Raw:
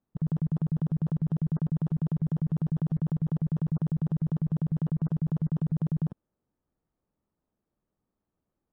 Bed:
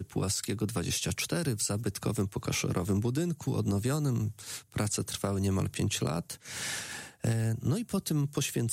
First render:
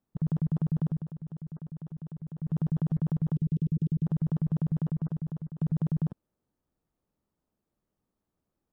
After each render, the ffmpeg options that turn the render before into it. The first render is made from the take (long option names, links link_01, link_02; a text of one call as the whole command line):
ffmpeg -i in.wav -filter_complex "[0:a]asplit=3[link_01][link_02][link_03];[link_01]afade=type=out:start_time=3.35:duration=0.02[link_04];[link_02]asuperstop=centerf=1000:order=8:qfactor=0.51,afade=type=in:start_time=3.35:duration=0.02,afade=type=out:start_time=4.05:duration=0.02[link_05];[link_03]afade=type=in:start_time=4.05:duration=0.02[link_06];[link_04][link_05][link_06]amix=inputs=3:normalize=0,asplit=4[link_07][link_08][link_09][link_10];[link_07]atrim=end=1.07,asetpts=PTS-STARTPTS,afade=type=out:start_time=0.87:duration=0.2:silence=0.237137[link_11];[link_08]atrim=start=1.07:end=2.37,asetpts=PTS-STARTPTS,volume=-12.5dB[link_12];[link_09]atrim=start=2.37:end=5.61,asetpts=PTS-STARTPTS,afade=type=in:duration=0.2:silence=0.237137,afade=type=out:start_time=2.34:duration=0.9:silence=0.16788[link_13];[link_10]atrim=start=5.61,asetpts=PTS-STARTPTS,afade=type=in:duration=0.004:curve=hsin:silence=0.16788[link_14];[link_11][link_12][link_13][link_14]concat=n=4:v=0:a=1" out.wav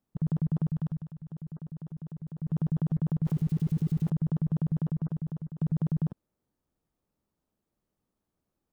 ffmpeg -i in.wav -filter_complex "[0:a]asettb=1/sr,asplit=3[link_01][link_02][link_03];[link_01]atrim=end=0.694[link_04];[link_02]atrim=start=0.69:end=1.31,asetpts=PTS-STARTPTS,afade=type=in:duration=0.004:curve=qsin,afade=type=out:start_time=0.616:duration=0.004:curve=qsin,equalizer=frequency=370:width_type=o:width=1.7:gain=-9[link_05];[link_03]atrim=start=1.306[link_06];[link_04][link_05]acrossfade=duration=0.004:curve1=hsin:curve2=qsin[link_07];[link_07][link_06]acrossfade=duration=0.004:curve1=qsin:curve2=hsin,asettb=1/sr,asplit=3[link_08][link_09][link_10];[link_08]atrim=end=3.254[link_11];[link_09]atrim=start=3.25:end=4.1,asetpts=PTS-STARTPTS,afade=type=in:duration=0.004:curve=qsin,afade=type=out:start_time=0.846:duration=0.004:curve=qsin,aeval=exprs='val(0)+0.5*0.00473*sgn(val(0))':channel_layout=same[link_12];[link_10]atrim=start=4.096[link_13];[link_11][link_12]acrossfade=duration=0.004:curve1=hsin:curve2=qsin[link_14];[link_14][link_13]acrossfade=duration=0.004:curve1=qsin:curve2=hsin" out.wav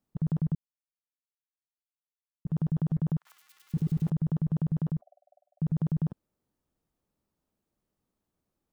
ffmpeg -i in.wav -filter_complex "[0:a]asettb=1/sr,asplit=3[link_01][link_02][link_03];[link_01]atrim=end=3.174[link_04];[link_02]atrim=start=3.17:end=3.74,asetpts=PTS-STARTPTS,afade=type=in:duration=0.004:curve=qsin,afade=type=out:start_time=0.566:duration=0.004:curve=qsin,highpass=frequency=1200:width=0.5412,highpass=frequency=1200:width=1.3066[link_05];[link_03]atrim=start=3.736[link_06];[link_04][link_05]acrossfade=duration=0.004:curve1=hsin:curve2=qsin[link_07];[link_07][link_06]acrossfade=duration=0.004:curve1=qsin:curve2=hsin,asettb=1/sr,asplit=3[link_08][link_09][link_10];[link_08]atrim=end=5.014[link_11];[link_09]atrim=start=5.01:end=5.62,asetpts=PTS-STARTPTS,afade=type=in:duration=0.004:curve=qsin,afade=type=out:start_time=0.606:duration=0.004:curve=qsin,asuperpass=centerf=660:order=12:qfactor=3.5[link_12];[link_10]atrim=start=5.616[link_13];[link_11][link_12]acrossfade=duration=0.004:curve1=hsin:curve2=qsin[link_14];[link_14][link_13]acrossfade=duration=0.004:curve1=qsin:curve2=hsin,asplit=3[link_15][link_16][link_17];[link_15]atrim=end=0.55,asetpts=PTS-STARTPTS,afade=type=out:start_time=0.546:duration=0.004:curve=hsin[link_18];[link_16]atrim=start=0.55:end=2.45,asetpts=PTS-STARTPTS,volume=0[link_19];[link_17]atrim=start=2.45,asetpts=PTS-STARTPTS,afade=type=in:duration=0.004:curve=hsin[link_20];[link_18][link_19][link_20]concat=n=3:v=0:a=1" out.wav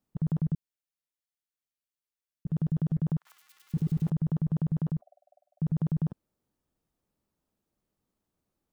ffmpeg -i in.wav -filter_complex "[0:a]asettb=1/sr,asplit=3[link_01][link_02][link_03];[link_01]atrim=end=0.454[link_04];[link_02]atrim=start=0.45:end=3.07,asetpts=PTS-STARTPTS,afade=type=in:duration=0.004:curve=qsin,afade=type=out:start_time=2.616:duration=0.004:curve=qsin,equalizer=frequency=940:width_type=o:width=0.77:gain=-5.5[link_05];[link_03]atrim=start=3.066[link_06];[link_04][link_05]acrossfade=duration=0.004:curve1=hsin:curve2=qsin[link_07];[link_07][link_06]acrossfade=duration=0.004:curve1=qsin:curve2=hsin" out.wav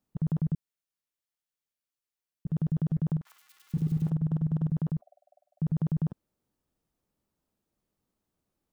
ffmpeg -i in.wav -filter_complex "[0:a]asettb=1/sr,asplit=3[link_01][link_02][link_03];[link_01]atrim=end=3.124[link_04];[link_02]atrim=start=3.12:end=4.7,asetpts=PTS-STARTPTS,afade=type=in:duration=0.004:curve=qsin,afade=type=out:start_time=1.576:duration=0.004:curve=qsin,asplit=2[link_05][link_06];[link_06]adelay=45,volume=-12dB[link_07];[link_05][link_07]amix=inputs=2:normalize=0,atrim=end_sample=69678[link_08];[link_03]atrim=start=4.696[link_09];[link_04][link_08]acrossfade=duration=0.004:curve1=hsin:curve2=qsin[link_10];[link_10][link_09]acrossfade=duration=0.004:curve1=qsin:curve2=hsin" out.wav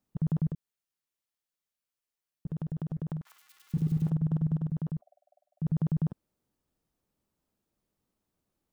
ffmpeg -i in.wav -filter_complex "[0:a]asettb=1/sr,asplit=3[link_01][link_02][link_03];[link_01]atrim=end=0.504[link_04];[link_02]atrim=start=0.5:end=3.17,asetpts=PTS-STARTPTS,afade=type=in:duration=0.004:curve=qsin,afade=type=out:start_time=2.666:duration=0.004:curve=qsin,acompressor=threshold=-31dB:ratio=6:attack=3.2:release=140:knee=1:detection=peak[link_05];[link_03]atrim=start=3.166[link_06];[link_04][link_05]acrossfade=duration=0.004:curve1=hsin:curve2=qsin[link_07];[link_07][link_06]acrossfade=duration=0.004:curve1=qsin:curve2=hsin,asplit=3[link_08][link_09][link_10];[link_08]atrim=end=4.562[link_11];[link_09]atrim=start=4.558:end=5.652,asetpts=PTS-STARTPTS,volume=-3.5dB[link_12];[link_10]atrim=start=5.648[link_13];[link_11][link_12]acrossfade=duration=0.004:curve1=hsin:curve2=hsin[link_14];[link_14][link_13]acrossfade=duration=0.004:curve1=hsin:curve2=hsin" out.wav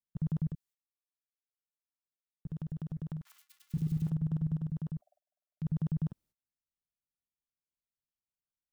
ffmpeg -i in.wav -af "agate=range=-20dB:threshold=-59dB:ratio=16:detection=peak,equalizer=frequency=540:width=0.36:gain=-9" out.wav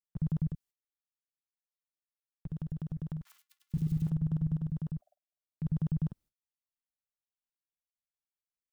ffmpeg -i in.wav -af "agate=range=-12dB:threshold=-59dB:ratio=16:detection=peak,lowshelf=frequency=70:gain=7" out.wav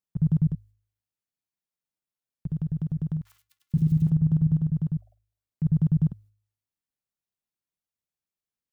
ffmpeg -i in.wav -af "equalizer=frequency=130:width_type=o:width=2.8:gain=9.5,bandreject=frequency=51.94:width_type=h:width=4,bandreject=frequency=103.88:width_type=h:width=4" out.wav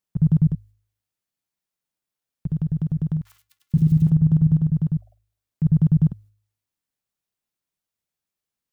ffmpeg -i in.wav -af "volume=5dB" out.wav